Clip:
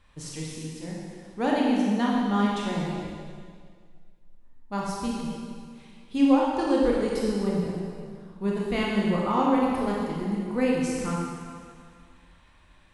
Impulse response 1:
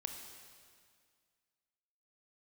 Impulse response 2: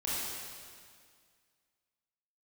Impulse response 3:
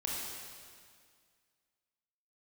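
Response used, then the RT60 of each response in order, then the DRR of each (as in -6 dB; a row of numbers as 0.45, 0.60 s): 3; 2.0, 2.0, 2.0 s; 4.0, -8.5, -4.0 dB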